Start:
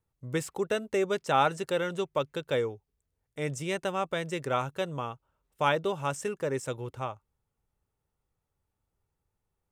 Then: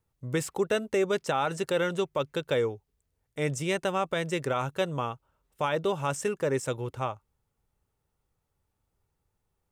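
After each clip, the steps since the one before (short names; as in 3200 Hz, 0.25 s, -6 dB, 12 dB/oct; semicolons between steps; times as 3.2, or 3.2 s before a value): limiter -21 dBFS, peak gain reduction 9.5 dB; gain +3.5 dB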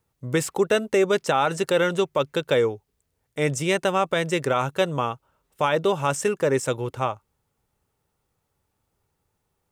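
low shelf 65 Hz -11.5 dB; gain +6.5 dB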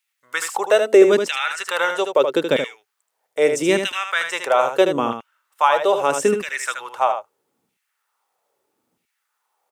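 LFO high-pass saw down 0.78 Hz 200–2600 Hz; echo 77 ms -7 dB; gain +2 dB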